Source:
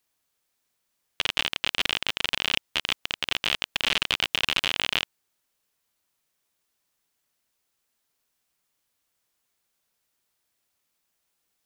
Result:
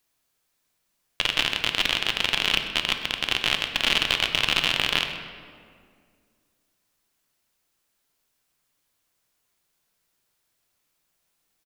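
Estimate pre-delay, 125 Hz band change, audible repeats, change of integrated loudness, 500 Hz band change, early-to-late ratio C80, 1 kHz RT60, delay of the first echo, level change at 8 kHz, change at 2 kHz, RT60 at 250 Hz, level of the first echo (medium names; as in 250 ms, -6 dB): 3 ms, +5.0 dB, 1, +3.0 dB, +3.5 dB, 8.0 dB, 1.9 s, 127 ms, +2.5 dB, +3.0 dB, 2.5 s, -15.5 dB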